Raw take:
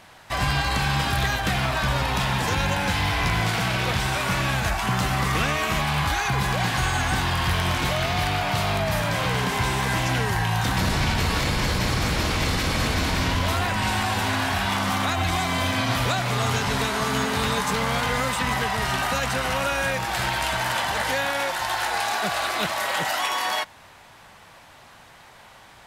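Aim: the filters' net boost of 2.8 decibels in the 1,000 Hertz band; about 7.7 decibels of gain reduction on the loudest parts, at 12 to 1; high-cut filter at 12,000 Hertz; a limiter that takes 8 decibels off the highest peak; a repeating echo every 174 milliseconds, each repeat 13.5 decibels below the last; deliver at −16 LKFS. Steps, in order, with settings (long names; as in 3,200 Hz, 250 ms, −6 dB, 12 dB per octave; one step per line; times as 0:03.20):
low-pass filter 12,000 Hz
parametric band 1,000 Hz +3.5 dB
downward compressor 12 to 1, threshold −26 dBFS
brickwall limiter −25 dBFS
repeating echo 174 ms, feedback 21%, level −13.5 dB
level +17.5 dB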